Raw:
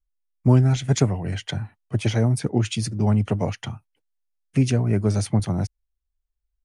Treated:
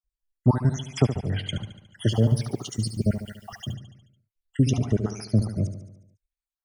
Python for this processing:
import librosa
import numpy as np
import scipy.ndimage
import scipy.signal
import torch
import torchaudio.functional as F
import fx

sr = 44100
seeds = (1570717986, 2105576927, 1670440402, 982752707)

y = fx.spec_dropout(x, sr, seeds[0], share_pct=69)
y = fx.vibrato(y, sr, rate_hz=3.1, depth_cents=6.2)
y = fx.echo_feedback(y, sr, ms=72, feedback_pct=58, wet_db=-10.5)
y = fx.dmg_noise_colour(y, sr, seeds[1], colour='blue', level_db=-63.0, at=(2.09, 3.73), fade=0.02)